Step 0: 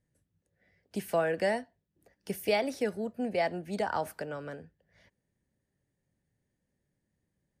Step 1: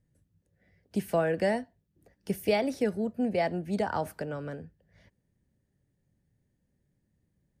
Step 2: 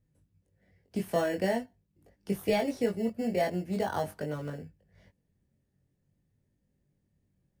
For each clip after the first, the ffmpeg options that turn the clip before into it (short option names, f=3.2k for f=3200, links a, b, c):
-af "lowshelf=f=330:g=9.5,volume=-1dB"
-filter_complex "[0:a]asplit=2[a][b];[b]acrusher=samples=18:mix=1:aa=0.000001,volume=-9dB[c];[a][c]amix=inputs=2:normalize=0,flanger=delay=20:depth=2:speed=0.45"